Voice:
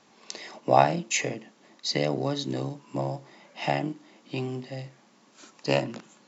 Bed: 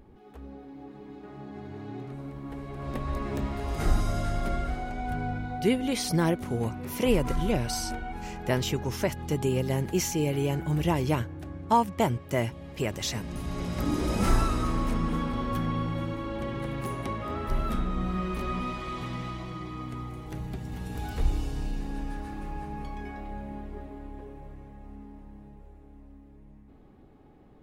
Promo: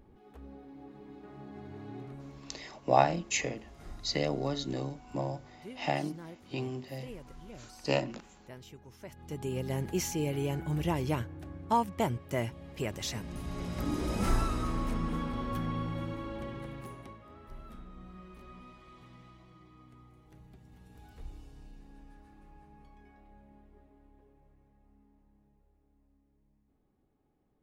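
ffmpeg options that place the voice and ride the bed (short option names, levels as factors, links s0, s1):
-filter_complex "[0:a]adelay=2200,volume=0.596[s0];[1:a]volume=3.98,afade=t=out:st=2.05:d=0.66:silence=0.141254,afade=t=in:st=9.01:d=0.81:silence=0.141254,afade=t=out:st=16.2:d=1.02:silence=0.188365[s1];[s0][s1]amix=inputs=2:normalize=0"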